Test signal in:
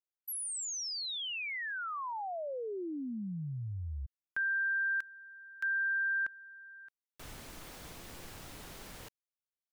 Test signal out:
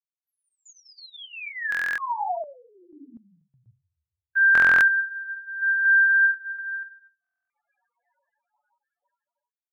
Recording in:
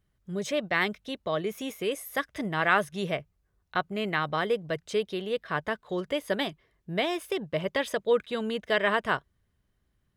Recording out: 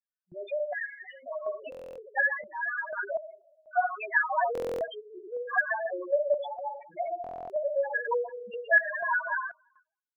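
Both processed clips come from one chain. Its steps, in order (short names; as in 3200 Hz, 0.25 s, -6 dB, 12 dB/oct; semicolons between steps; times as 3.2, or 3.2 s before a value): reverse delay 0.159 s, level -10 dB; BPF 660–3600 Hz; on a send: echo 0.34 s -19 dB; on the sum: two-slope reverb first 0.83 s, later 2.2 s, from -25 dB, DRR -1.5 dB; loudest bins only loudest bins 2; gate with hold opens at -52 dBFS, closes at -61 dBFS, hold 69 ms, range -24 dB; in parallel at +2 dB: compressor, threshold -37 dBFS; on the sum: comb 1.2 ms, depth 75%; random-step tremolo 4.1 Hz, depth 90%; stuck buffer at 1.7/4.53/7.22, samples 1024, times 11; gain +4.5 dB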